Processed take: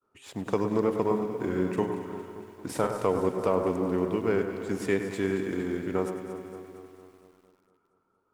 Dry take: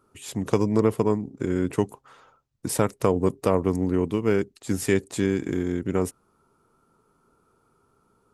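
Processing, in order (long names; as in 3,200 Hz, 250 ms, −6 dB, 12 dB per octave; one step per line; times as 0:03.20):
downward expander −60 dBFS
mid-hump overdrive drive 12 dB, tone 1,500 Hz, clips at −5 dBFS
in parallel at −9 dB: centre clipping without the shift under −35 dBFS
on the sum: pitch vibrato 4.5 Hz 20 cents
0:01.07–0:02.96: double-tracking delay 43 ms −7 dB
on a send: delay that swaps between a low-pass and a high-pass 115 ms, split 1,900 Hz, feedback 76%, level −8.5 dB
on the sum: feedback echo at a low word length 99 ms, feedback 80%, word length 8 bits, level −13 dB
level −8 dB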